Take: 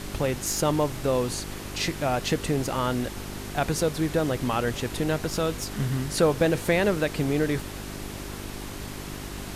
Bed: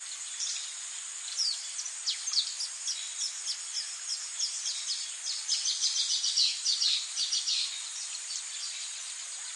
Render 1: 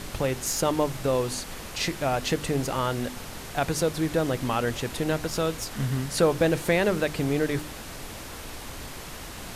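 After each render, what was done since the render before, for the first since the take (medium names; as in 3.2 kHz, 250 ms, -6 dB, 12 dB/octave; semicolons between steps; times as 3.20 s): de-hum 50 Hz, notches 8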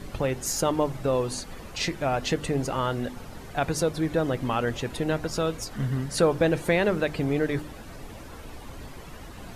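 noise reduction 11 dB, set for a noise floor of -40 dBFS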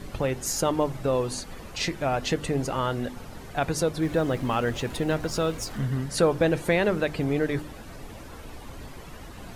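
4.02–5.80 s: companding laws mixed up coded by mu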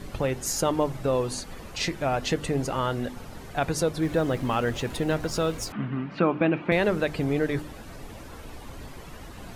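5.72–6.72 s: cabinet simulation 180–2800 Hz, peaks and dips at 190 Hz +7 dB, 300 Hz +5 dB, 480 Hz -7 dB, 1.2 kHz +5 dB, 1.8 kHz -4 dB, 2.5 kHz +7 dB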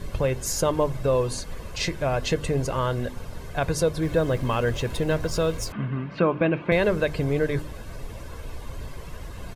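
bass shelf 180 Hz +5.5 dB; comb 1.9 ms, depth 38%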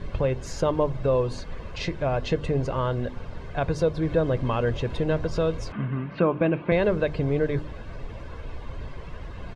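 low-pass 3.4 kHz 12 dB/octave; dynamic bell 1.9 kHz, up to -4 dB, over -39 dBFS, Q 0.96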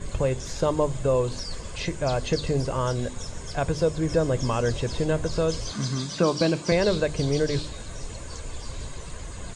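add bed -8 dB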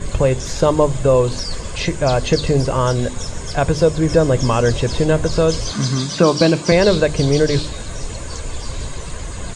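trim +9 dB; peak limiter -2 dBFS, peak gain reduction 1 dB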